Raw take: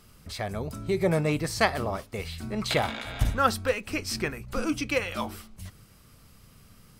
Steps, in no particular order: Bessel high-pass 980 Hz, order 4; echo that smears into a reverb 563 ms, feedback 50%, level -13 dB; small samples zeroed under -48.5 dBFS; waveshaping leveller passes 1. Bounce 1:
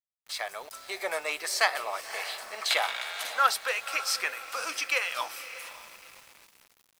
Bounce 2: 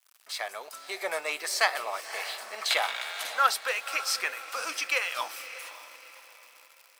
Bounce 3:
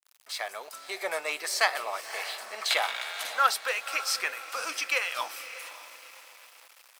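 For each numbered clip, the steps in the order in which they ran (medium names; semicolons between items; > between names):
echo that smears into a reverb > waveshaping leveller > Bessel high-pass > small samples zeroed; small samples zeroed > echo that smears into a reverb > waveshaping leveller > Bessel high-pass; echo that smears into a reverb > waveshaping leveller > small samples zeroed > Bessel high-pass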